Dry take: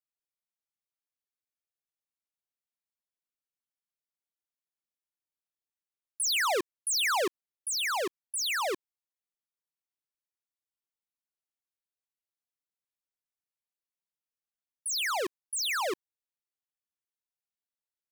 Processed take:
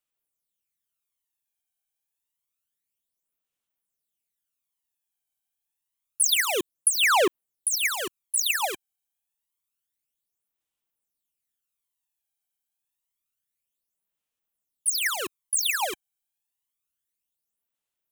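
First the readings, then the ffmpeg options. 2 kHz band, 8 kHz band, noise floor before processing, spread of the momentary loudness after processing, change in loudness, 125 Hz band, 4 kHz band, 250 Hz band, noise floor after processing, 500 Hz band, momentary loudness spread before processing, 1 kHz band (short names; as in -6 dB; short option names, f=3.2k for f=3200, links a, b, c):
+5.5 dB, +7.5 dB, under -85 dBFS, 11 LU, +6.0 dB, n/a, +4.0 dB, +4.0 dB, under -85 dBFS, +3.5 dB, 8 LU, +3.5 dB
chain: -af "aexciter=amount=1:drive=8.2:freq=2.6k,aphaser=in_gain=1:out_gain=1:delay=1.3:decay=0.6:speed=0.28:type=sinusoidal"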